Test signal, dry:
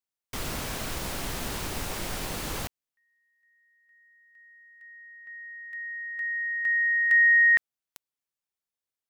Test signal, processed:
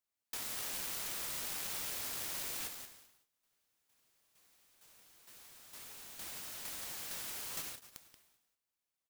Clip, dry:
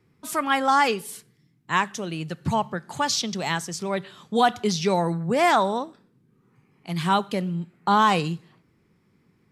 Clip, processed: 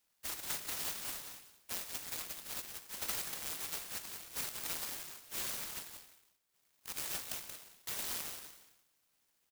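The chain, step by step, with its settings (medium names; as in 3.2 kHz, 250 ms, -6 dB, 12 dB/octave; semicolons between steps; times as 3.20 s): steep high-pass 2.3 kHz 36 dB/octave; compression 6:1, threshold -39 dBFS; on a send: delay 180 ms -7.5 dB; on the sum: gated-style reverb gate 420 ms falling, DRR 6 dB; delay time shaken by noise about 4.4 kHz, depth 0.36 ms; trim +1.5 dB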